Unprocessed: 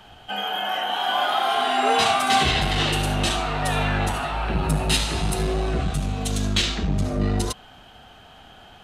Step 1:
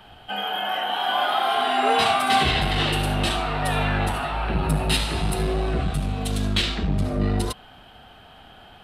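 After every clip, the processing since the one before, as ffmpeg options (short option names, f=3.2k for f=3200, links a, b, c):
-af "equalizer=f=6.5k:w=2.4:g=-10.5"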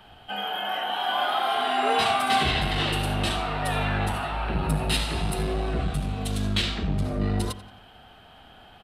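-filter_complex "[0:a]asplit=2[a][b];[b]adelay=89,lowpass=f=4.6k:p=1,volume=-15dB,asplit=2[c][d];[d]adelay=89,lowpass=f=4.6k:p=1,volume=0.51,asplit=2[e][f];[f]adelay=89,lowpass=f=4.6k:p=1,volume=0.51,asplit=2[g][h];[h]adelay=89,lowpass=f=4.6k:p=1,volume=0.51,asplit=2[i][j];[j]adelay=89,lowpass=f=4.6k:p=1,volume=0.51[k];[a][c][e][g][i][k]amix=inputs=6:normalize=0,volume=-3dB"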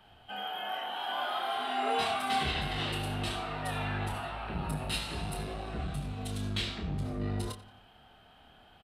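-filter_complex "[0:a]asplit=2[a][b];[b]adelay=28,volume=-6.5dB[c];[a][c]amix=inputs=2:normalize=0,volume=-9dB"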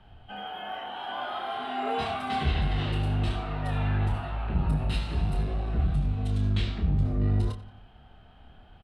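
-af "aemphasis=mode=reproduction:type=bsi"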